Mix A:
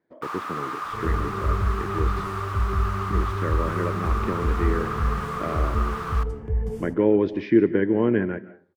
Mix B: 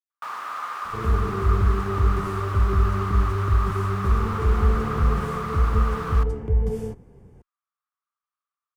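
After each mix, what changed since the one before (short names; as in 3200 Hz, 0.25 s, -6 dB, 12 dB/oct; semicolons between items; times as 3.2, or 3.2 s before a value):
speech: muted; second sound +4.0 dB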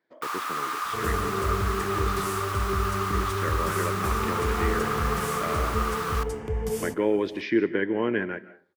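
speech: unmuted; second sound +4.5 dB; master: add tilt +3.5 dB/oct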